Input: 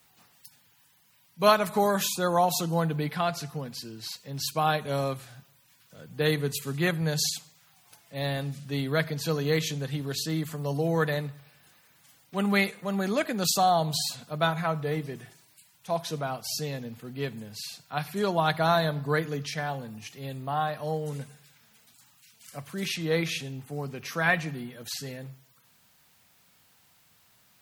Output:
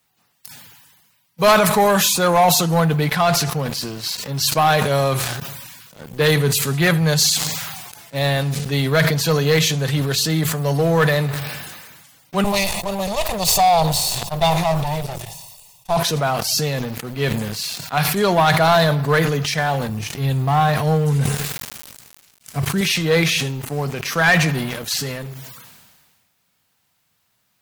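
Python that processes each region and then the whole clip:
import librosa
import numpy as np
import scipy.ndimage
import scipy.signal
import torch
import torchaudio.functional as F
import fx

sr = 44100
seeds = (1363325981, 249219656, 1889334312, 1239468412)

y = fx.chain(x, sr, fx.lower_of_two(delay_ms=1.1),
    fx.fixed_phaser(hz=650.0, stages=4), at=(12.44, 15.97))
y = fx.chain(y, sr, fx.low_shelf(hz=190.0, db=11.5),
    fx.notch(hz=570.0, q=6.6),
    fx.sample_gate(floor_db=-51.5), at=(19.89, 22.81))
y = fx.dynamic_eq(y, sr, hz=280.0, q=1.4, threshold_db=-44.0, ratio=4.0, max_db=-6)
y = fx.leveller(y, sr, passes=3)
y = fx.sustainer(y, sr, db_per_s=35.0)
y = F.gain(torch.from_numpy(y), 1.0).numpy()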